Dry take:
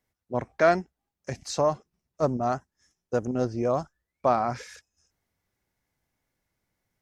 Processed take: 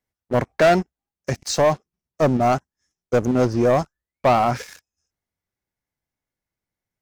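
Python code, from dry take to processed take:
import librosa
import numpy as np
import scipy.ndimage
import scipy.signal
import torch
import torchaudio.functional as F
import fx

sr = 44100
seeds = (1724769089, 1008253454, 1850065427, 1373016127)

y = fx.rider(x, sr, range_db=3, speed_s=2.0)
y = fx.leveller(y, sr, passes=3)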